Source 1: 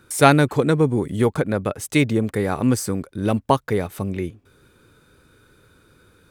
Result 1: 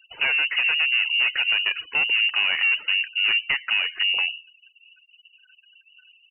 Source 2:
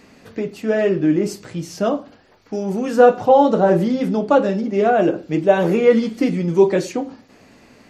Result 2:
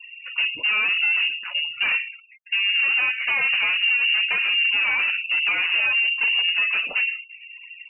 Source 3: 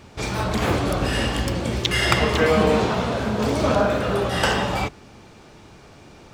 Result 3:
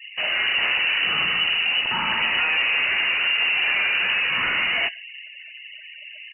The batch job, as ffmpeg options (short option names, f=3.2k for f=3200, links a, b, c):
-filter_complex "[0:a]acompressor=threshold=-17dB:ratio=10,equalizer=f=125:t=o:w=1:g=-4,equalizer=f=250:t=o:w=1:g=8,equalizer=f=1k:t=o:w=1:g=9,crystalizer=i=2:c=0,aeval=exprs='(tanh(12.6*val(0)+0.3)-tanh(0.3))/12.6':c=same,highpass=f=50:p=1,lowshelf=f=130:g=9,bandreject=f=168.5:t=h:w=4,bandreject=f=337:t=h:w=4,bandreject=f=505.5:t=h:w=4,bandreject=f=674:t=h:w=4,bandreject=f=842.5:t=h:w=4,bandreject=f=1.011k:t=h:w=4,bandreject=f=1.1795k:t=h:w=4,bandreject=f=1.348k:t=h:w=4,bandreject=f=1.5165k:t=h:w=4,bandreject=f=1.685k:t=h:w=4,bandreject=f=1.8535k:t=h:w=4,bandreject=f=2.022k:t=h:w=4,bandreject=f=2.1905k:t=h:w=4,bandreject=f=2.359k:t=h:w=4,asplit=2[a][b];[b]aecho=0:1:110|220:0.0668|0.0154[c];[a][c]amix=inputs=2:normalize=0,afftfilt=real='re*gte(hypot(re,im),0.0158)':imag='im*gte(hypot(re,im),0.0158)':win_size=1024:overlap=0.75,lowpass=f=2.6k:t=q:w=0.5098,lowpass=f=2.6k:t=q:w=0.6013,lowpass=f=2.6k:t=q:w=0.9,lowpass=f=2.6k:t=q:w=2.563,afreqshift=-3000,volume=2dB"